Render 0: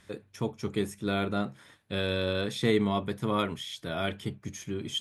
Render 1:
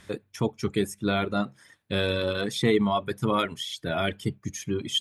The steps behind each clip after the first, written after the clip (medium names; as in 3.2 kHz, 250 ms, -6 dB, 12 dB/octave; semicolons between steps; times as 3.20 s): reverb removal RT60 1.6 s; in parallel at +1 dB: peak limiter -21.5 dBFS, peak gain reduction 9.5 dB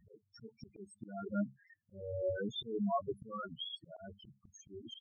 loudest bins only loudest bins 4; slow attack 364 ms; trim -5 dB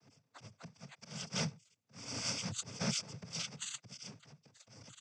bit-reversed sample order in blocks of 128 samples; noise-vocoded speech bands 16; trim +5 dB